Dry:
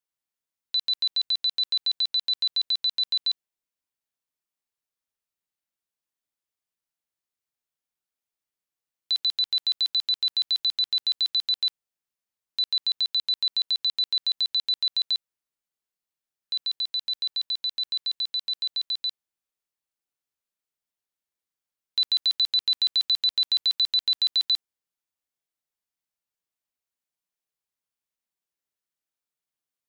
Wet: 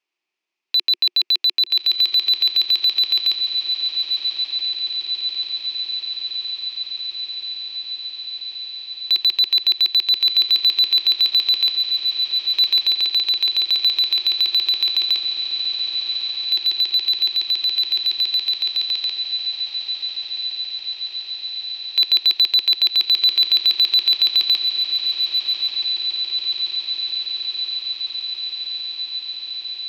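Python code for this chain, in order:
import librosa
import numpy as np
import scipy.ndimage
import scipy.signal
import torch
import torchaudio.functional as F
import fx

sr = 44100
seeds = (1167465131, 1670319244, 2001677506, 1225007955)

p1 = fx.cabinet(x, sr, low_hz=230.0, low_slope=24, high_hz=5300.0, hz=(250.0, 360.0, 510.0, 1500.0, 2500.0, 3800.0), db=(-7, 10, -9, -6, 10, -3))
p2 = fx.echo_diffused(p1, sr, ms=1249, feedback_pct=78, wet_db=-6.0)
p3 = np.clip(p2, -10.0 ** (-28.0 / 20.0), 10.0 ** (-28.0 / 20.0))
p4 = p2 + (p3 * 10.0 ** (-10.5 / 20.0))
y = p4 * 10.0 ** (8.5 / 20.0)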